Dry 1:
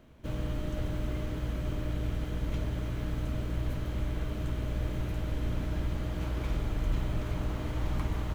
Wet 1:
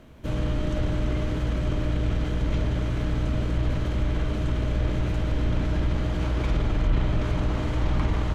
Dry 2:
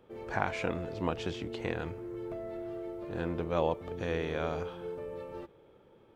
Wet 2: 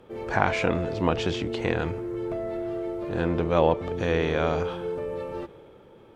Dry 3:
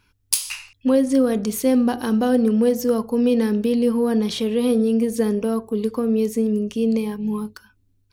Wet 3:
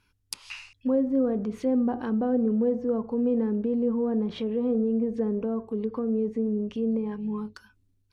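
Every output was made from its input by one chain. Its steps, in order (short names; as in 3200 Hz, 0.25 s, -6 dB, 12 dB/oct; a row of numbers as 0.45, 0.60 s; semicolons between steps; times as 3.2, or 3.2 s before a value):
treble ducked by the level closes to 960 Hz, closed at -17.5 dBFS; transient shaper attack -1 dB, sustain +3 dB; match loudness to -27 LUFS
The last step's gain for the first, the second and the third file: +7.5, +8.5, -6.5 dB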